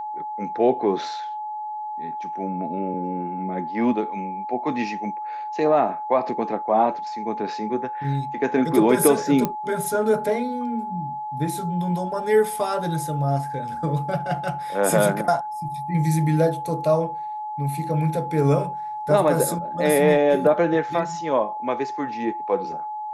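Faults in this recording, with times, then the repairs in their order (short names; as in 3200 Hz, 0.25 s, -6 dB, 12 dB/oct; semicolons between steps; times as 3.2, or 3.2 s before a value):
tone 850 Hz -28 dBFS
9.45 pop -9 dBFS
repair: de-click; notch 850 Hz, Q 30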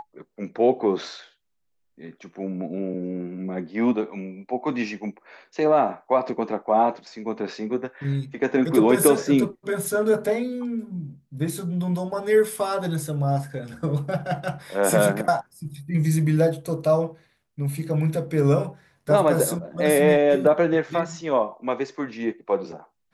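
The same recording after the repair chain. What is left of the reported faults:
none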